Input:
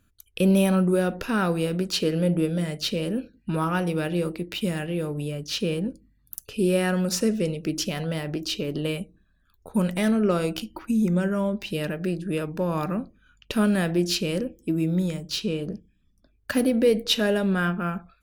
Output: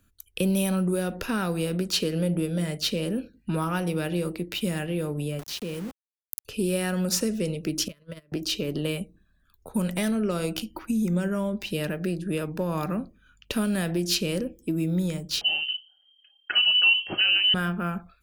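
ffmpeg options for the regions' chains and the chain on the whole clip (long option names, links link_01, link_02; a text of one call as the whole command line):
ffmpeg -i in.wav -filter_complex "[0:a]asettb=1/sr,asplit=3[link_01][link_02][link_03];[link_01]atrim=end=5.394[link_04];[link_02]atrim=start=5.39:end=6.45,asetpts=PTS-STARTPTS,afade=type=in:duration=0.004:curve=qsin,afade=type=out:start_time=1.056:duration=0.004:curve=qsin,aeval=exprs='val(0)*gte(abs(val(0)),0.0224)':channel_layout=same,acompressor=threshold=-35dB:ratio=2:attack=3.2:release=140:knee=1:detection=peak[link_05];[link_03]atrim=start=6.446[link_06];[link_04][link_05]acrossfade=duration=0.004:curve1=hsin:curve2=qsin[link_07];[link_07][link_06]acrossfade=duration=0.004:curve1=qsin:curve2=hsin,asettb=1/sr,asplit=3[link_08][link_09][link_10];[link_08]atrim=end=7.884[link_11];[link_09]atrim=start=7.88:end=8.32,asetpts=PTS-STARTPTS,afade=type=in:duration=0.004:curve=qsin,afade=type=out:start_time=0.436:duration=0.004:curve=qsin,agate=range=-31dB:threshold=-26dB:ratio=16:release=100:detection=peak,asuperstop=centerf=800:order=20:qfactor=2.6[link_12];[link_10]atrim=start=8.316[link_13];[link_11][link_12]acrossfade=duration=0.004:curve1=hsin:curve2=qsin[link_14];[link_14][link_13]acrossfade=duration=0.004:curve1=qsin:curve2=hsin,asettb=1/sr,asplit=3[link_15][link_16][link_17];[link_15]atrim=end=15.414[link_18];[link_16]atrim=start=15.41:end=17.54,asetpts=PTS-STARTPTS,afade=type=in:duration=0.004:curve=qsin,afade=type=out:start_time=2.126:duration=0.004:curve=qsin,aecho=1:1:4.6:0.4,atrim=end_sample=93933,lowpass=frequency=2700:width_type=q:width=0.5098,lowpass=frequency=2700:width_type=q:width=0.6013,lowpass=frequency=2700:width_type=q:width=0.9,lowpass=frequency=2700:width_type=q:width=2.563,afreqshift=-3200[link_19];[link_17]atrim=start=17.536[link_20];[link_18][link_19]acrossfade=duration=0.004:curve1=hsin:curve2=qsin[link_21];[link_21][link_20]acrossfade=duration=0.004:curve1=qsin:curve2=hsin,acrossover=split=140|3000[link_22][link_23][link_24];[link_23]acompressor=threshold=-24dB:ratio=6[link_25];[link_22][link_25][link_24]amix=inputs=3:normalize=0,highshelf=frequency=8500:gain=5" out.wav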